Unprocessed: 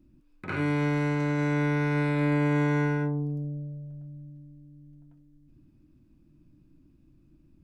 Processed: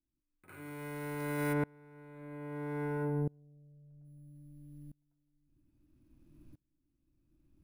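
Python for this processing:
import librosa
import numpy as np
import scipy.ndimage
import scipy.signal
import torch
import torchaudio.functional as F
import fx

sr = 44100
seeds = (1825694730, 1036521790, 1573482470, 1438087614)

y = np.repeat(x[::4], 4)[:len(x)]
y = fx.peak_eq(y, sr, hz=180.0, db=-6.0, octaves=0.96)
y = fx.echo_feedback(y, sr, ms=166, feedback_pct=17, wet_db=-13.0)
y = fx.rider(y, sr, range_db=5, speed_s=2.0)
y = fx.lowpass(y, sr, hz=1200.0, slope=6, at=(1.52, 4.04), fade=0.02)
y = fx.tremolo_decay(y, sr, direction='swelling', hz=0.61, depth_db=30)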